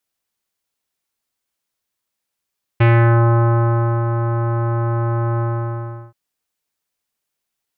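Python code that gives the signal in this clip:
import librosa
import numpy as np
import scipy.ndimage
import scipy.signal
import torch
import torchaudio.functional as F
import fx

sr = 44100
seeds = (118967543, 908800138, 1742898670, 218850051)

y = fx.sub_voice(sr, note=46, wave='square', cutoff_hz=1300.0, q=1.7, env_oct=1.0, env_s=0.43, attack_ms=10.0, decay_s=1.23, sustain_db=-8.0, release_s=0.74, note_s=2.59, slope=24)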